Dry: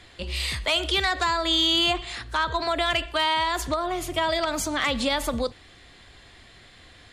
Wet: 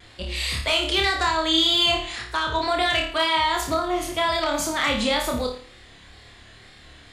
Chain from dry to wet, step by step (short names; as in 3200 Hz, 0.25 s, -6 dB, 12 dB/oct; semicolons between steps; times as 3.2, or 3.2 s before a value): wow and flutter 72 cents; flutter echo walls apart 4.8 m, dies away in 0.44 s